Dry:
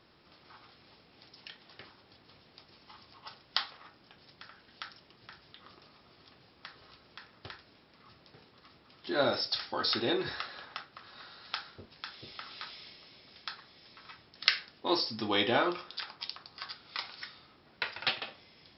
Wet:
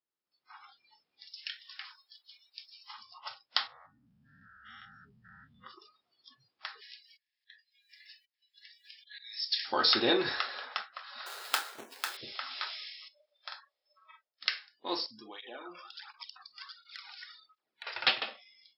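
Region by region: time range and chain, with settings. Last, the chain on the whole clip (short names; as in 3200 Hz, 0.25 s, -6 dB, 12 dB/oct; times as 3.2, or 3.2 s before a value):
1.26–2.93 HPF 830 Hz + high shelf 4100 Hz +4.5 dB
3.67–5.64 stepped spectrum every 0.2 s + tilt -2.5 dB/oct
6.81–9.65 auto swell 0.56 s + brick-wall FIR high-pass 1600 Hz + mismatched tape noise reduction encoder only
11.26–12.17 half-waves squared off + HPF 270 Hz
13.08–14.41 ladder high-pass 510 Hz, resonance 65% + doubler 46 ms -3 dB
15.06–17.87 compressor 5:1, threshold -46 dBFS + tape flanging out of phase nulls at 1.4 Hz, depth 2.6 ms
whole clip: spectral noise reduction 28 dB; HPF 320 Hz 6 dB/oct; AGC gain up to 14 dB; gain -7.5 dB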